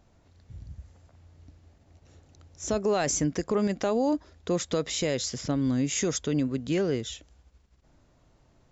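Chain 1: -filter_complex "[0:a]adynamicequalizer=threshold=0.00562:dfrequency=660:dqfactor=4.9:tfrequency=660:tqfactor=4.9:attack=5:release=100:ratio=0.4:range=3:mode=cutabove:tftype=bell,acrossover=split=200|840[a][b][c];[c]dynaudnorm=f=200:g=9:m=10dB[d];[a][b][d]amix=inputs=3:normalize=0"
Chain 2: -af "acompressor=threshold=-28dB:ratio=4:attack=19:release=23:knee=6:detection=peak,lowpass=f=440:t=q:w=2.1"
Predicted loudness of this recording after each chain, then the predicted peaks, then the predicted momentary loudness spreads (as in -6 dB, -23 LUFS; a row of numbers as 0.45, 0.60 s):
-23.5, -27.5 LUFS; -7.5, -14.5 dBFS; 9, 6 LU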